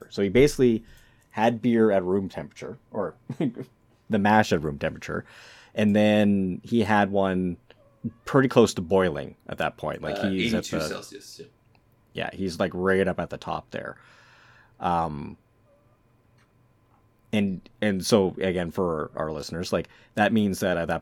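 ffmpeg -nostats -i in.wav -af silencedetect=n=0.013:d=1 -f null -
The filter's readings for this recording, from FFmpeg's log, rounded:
silence_start: 15.34
silence_end: 17.33 | silence_duration: 1.99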